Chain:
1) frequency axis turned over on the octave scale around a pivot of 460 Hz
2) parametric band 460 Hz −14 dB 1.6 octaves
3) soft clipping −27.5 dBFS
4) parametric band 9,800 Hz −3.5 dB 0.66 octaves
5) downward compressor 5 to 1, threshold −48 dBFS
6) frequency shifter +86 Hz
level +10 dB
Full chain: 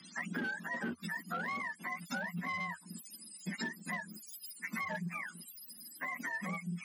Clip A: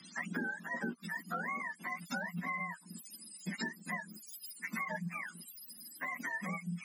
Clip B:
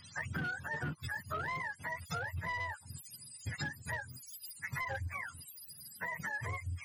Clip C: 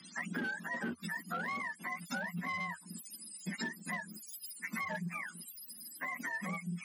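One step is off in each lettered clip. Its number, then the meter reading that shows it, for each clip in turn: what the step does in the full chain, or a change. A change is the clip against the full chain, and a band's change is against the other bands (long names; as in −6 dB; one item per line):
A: 3, distortion level −13 dB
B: 6, 250 Hz band −7.5 dB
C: 4, 8 kHz band +2.5 dB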